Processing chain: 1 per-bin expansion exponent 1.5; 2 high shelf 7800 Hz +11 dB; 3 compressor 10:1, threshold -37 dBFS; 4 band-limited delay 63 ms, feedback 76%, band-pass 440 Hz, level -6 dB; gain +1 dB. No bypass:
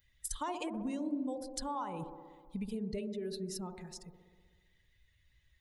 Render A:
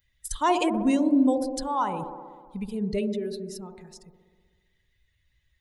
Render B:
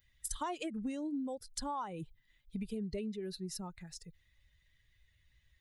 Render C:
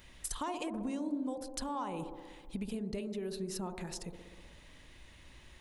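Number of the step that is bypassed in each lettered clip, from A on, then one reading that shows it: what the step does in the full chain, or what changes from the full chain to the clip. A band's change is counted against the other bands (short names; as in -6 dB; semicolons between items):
3, mean gain reduction 8.5 dB; 4, echo-to-direct -8.5 dB to none; 1, momentary loudness spread change +8 LU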